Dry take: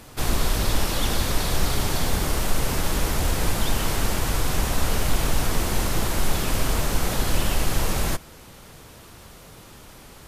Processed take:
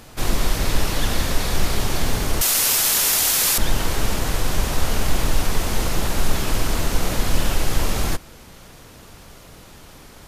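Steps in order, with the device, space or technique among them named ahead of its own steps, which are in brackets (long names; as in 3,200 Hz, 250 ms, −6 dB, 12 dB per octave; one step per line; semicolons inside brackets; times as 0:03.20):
octave pedal (pitch-shifted copies added −12 semitones −3 dB)
0:02.41–0:03.58: spectral tilt +4.5 dB per octave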